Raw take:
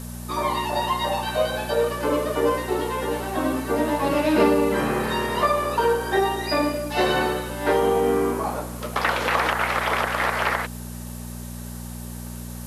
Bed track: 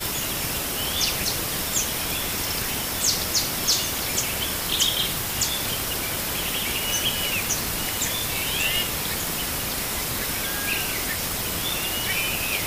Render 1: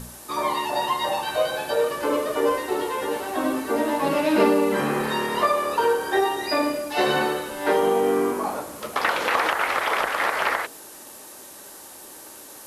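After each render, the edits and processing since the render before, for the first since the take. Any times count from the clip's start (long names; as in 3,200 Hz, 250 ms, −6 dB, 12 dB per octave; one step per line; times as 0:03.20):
hum removal 60 Hz, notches 11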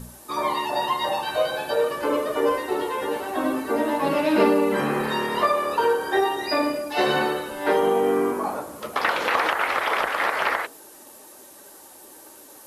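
broadband denoise 6 dB, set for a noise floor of −43 dBFS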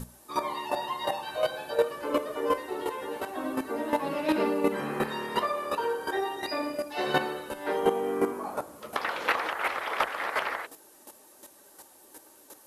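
square-wave tremolo 2.8 Hz, depth 65%, duty 10%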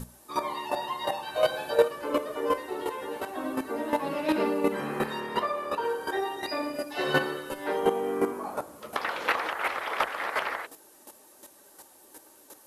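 0:01.36–0:01.88: clip gain +3.5 dB
0:05.20–0:05.85: high-shelf EQ 4,600 Hz −6 dB
0:06.74–0:07.67: comb filter 7.4 ms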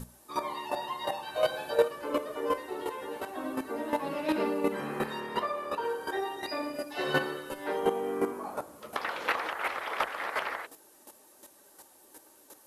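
level −3 dB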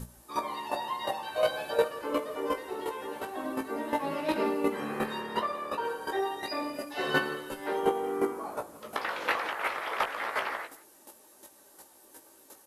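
double-tracking delay 18 ms −6.5 dB
single-tap delay 170 ms −19.5 dB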